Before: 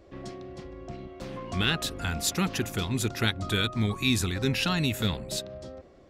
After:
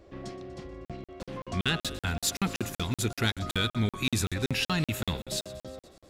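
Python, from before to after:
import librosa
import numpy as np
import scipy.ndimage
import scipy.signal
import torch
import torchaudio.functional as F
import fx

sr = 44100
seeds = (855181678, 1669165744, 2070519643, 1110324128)

y = 10.0 ** (-15.5 / 20.0) * np.tanh(x / 10.0 ** (-15.5 / 20.0))
y = fx.echo_thinned(y, sr, ms=121, feedback_pct=69, hz=420.0, wet_db=-17.5)
y = fx.buffer_crackle(y, sr, first_s=0.85, period_s=0.19, block=2048, kind='zero')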